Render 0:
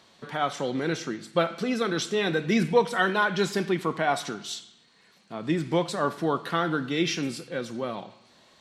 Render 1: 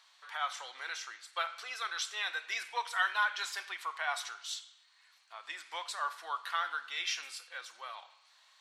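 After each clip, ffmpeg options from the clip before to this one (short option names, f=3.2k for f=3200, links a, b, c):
-af "highpass=f=950:w=0.5412,highpass=f=950:w=1.3066,volume=-4.5dB"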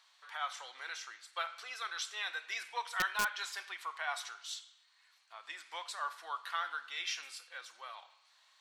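-af "aeval=exprs='(mod(8.91*val(0)+1,2)-1)/8.91':c=same,volume=-3dB"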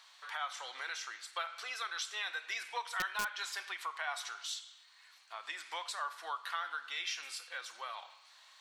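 -af "acompressor=threshold=-48dB:ratio=2,volume=7dB"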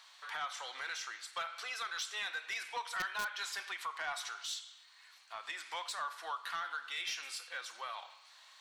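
-af "asoftclip=type=tanh:threshold=-31dB,volume=1dB"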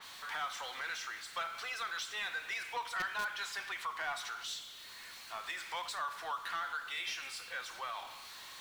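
-af "aeval=exprs='val(0)+0.5*0.00473*sgn(val(0))':c=same,adynamicequalizer=threshold=0.00316:dfrequency=3700:dqfactor=0.7:tfrequency=3700:tqfactor=0.7:attack=5:release=100:ratio=0.375:range=2.5:mode=cutabove:tftype=highshelf"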